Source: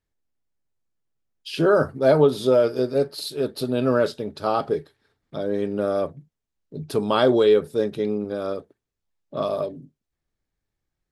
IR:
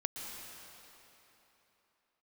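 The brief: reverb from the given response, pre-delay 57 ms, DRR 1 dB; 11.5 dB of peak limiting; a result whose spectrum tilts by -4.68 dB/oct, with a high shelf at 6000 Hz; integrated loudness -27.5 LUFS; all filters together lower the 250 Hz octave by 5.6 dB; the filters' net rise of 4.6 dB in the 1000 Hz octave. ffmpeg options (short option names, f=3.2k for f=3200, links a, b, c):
-filter_complex "[0:a]equalizer=f=250:t=o:g=-8.5,equalizer=f=1k:t=o:g=6.5,highshelf=f=6k:g=8,alimiter=limit=-15.5dB:level=0:latency=1,asplit=2[a][b];[1:a]atrim=start_sample=2205,adelay=57[c];[b][c]afir=irnorm=-1:irlink=0,volume=-2.5dB[d];[a][d]amix=inputs=2:normalize=0,volume=-2.5dB"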